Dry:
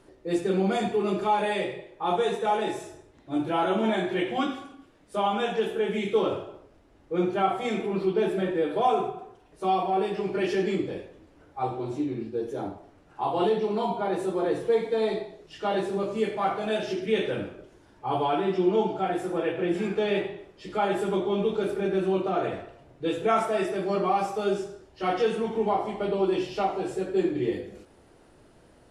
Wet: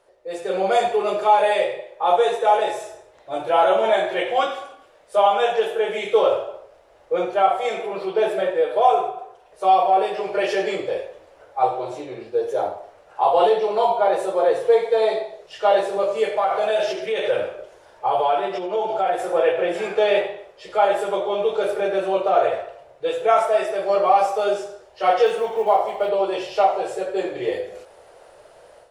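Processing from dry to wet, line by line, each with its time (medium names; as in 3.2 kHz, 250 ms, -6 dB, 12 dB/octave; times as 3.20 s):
16.35–19.26 s: compression, threshold -26 dBFS
25.26–26.09 s: companded quantiser 8-bit
whole clip: resonant low shelf 380 Hz -12.5 dB, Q 3; level rider gain up to 11.5 dB; trim -3.5 dB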